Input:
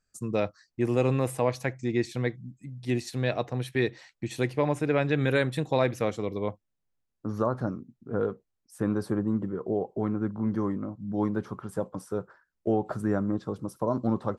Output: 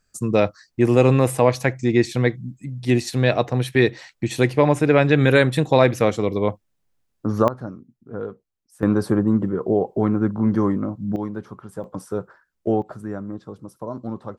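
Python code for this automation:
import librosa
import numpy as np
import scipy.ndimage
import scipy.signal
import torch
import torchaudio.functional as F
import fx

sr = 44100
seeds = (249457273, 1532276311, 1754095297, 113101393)

y = fx.gain(x, sr, db=fx.steps((0.0, 9.5), (7.48, -2.0), (8.83, 9.0), (11.16, -1.0), (11.84, 5.0), (12.82, -3.5)))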